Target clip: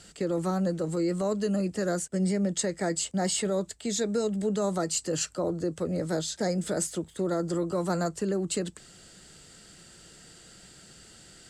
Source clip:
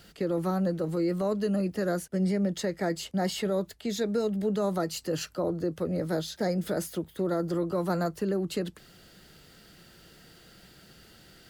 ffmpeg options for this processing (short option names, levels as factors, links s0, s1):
-af "lowpass=f=7900:t=q:w=6.3"